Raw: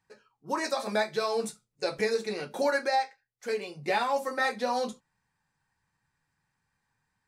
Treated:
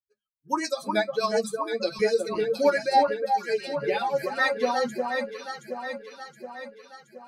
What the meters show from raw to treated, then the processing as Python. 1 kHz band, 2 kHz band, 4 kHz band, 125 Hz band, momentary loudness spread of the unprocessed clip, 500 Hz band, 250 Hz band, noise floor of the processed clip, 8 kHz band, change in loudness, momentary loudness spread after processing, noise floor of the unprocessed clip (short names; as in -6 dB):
+5.0 dB, +3.5 dB, +2.5 dB, +3.0 dB, 8 LU, +5.5 dB, +4.5 dB, -83 dBFS, +2.0 dB, +4.0 dB, 17 LU, -81 dBFS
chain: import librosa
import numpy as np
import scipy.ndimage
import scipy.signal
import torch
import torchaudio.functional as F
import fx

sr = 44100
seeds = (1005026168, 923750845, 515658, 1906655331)

y = fx.bin_expand(x, sr, power=2.0)
y = fx.rotary_switch(y, sr, hz=7.0, then_hz=0.75, switch_at_s=2.74)
y = fx.hum_notches(y, sr, base_hz=50, count=4)
y = fx.echo_alternate(y, sr, ms=361, hz=1500.0, feedback_pct=73, wet_db=-4.0)
y = y * 10.0 ** (9.0 / 20.0)